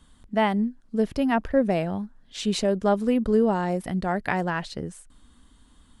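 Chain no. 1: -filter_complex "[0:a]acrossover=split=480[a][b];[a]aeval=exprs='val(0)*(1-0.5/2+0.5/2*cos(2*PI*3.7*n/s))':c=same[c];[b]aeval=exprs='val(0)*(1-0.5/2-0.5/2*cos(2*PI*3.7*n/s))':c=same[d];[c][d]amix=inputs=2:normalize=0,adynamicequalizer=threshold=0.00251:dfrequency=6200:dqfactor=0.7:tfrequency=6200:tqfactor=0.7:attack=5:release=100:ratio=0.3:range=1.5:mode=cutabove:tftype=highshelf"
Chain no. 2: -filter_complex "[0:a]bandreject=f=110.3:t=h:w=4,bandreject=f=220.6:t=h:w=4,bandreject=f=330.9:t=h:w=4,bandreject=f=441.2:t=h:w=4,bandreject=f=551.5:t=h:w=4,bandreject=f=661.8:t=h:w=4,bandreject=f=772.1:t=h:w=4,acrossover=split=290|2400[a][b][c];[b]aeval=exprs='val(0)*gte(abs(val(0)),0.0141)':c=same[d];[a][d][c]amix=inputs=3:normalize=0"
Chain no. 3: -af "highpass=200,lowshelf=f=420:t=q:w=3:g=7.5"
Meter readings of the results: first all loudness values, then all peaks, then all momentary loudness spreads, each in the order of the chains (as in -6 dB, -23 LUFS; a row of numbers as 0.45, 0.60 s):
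-27.5, -25.5, -19.5 LUFS; -11.0, -9.0, -6.5 dBFS; 9, 10, 12 LU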